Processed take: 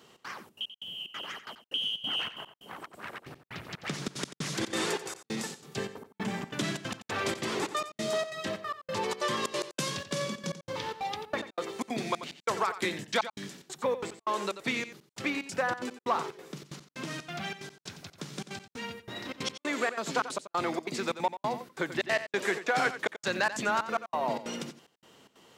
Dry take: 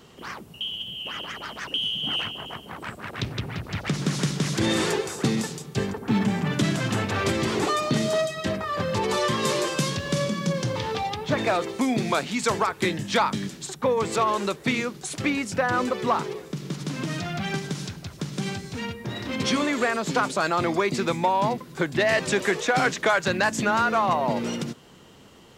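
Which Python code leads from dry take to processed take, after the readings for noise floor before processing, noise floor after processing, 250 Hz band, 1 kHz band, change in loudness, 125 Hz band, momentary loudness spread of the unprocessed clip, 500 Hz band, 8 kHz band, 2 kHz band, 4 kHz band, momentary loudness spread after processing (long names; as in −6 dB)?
−47 dBFS, below −85 dBFS, −11.0 dB, −7.5 dB, −7.5 dB, −14.0 dB, 10 LU, −8.0 dB, −7.0 dB, −6.5 dB, −6.0 dB, 13 LU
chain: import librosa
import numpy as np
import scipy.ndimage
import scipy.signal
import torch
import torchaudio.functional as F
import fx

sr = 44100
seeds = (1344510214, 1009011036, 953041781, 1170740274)

y = fx.highpass(x, sr, hz=350.0, slope=6)
y = fx.step_gate(y, sr, bpm=184, pattern='xx.xxx.x..x', floor_db=-60.0, edge_ms=4.5)
y = y + 10.0 ** (-12.5 / 20.0) * np.pad(y, (int(89 * sr / 1000.0), 0))[:len(y)]
y = y * 10.0 ** (-4.5 / 20.0)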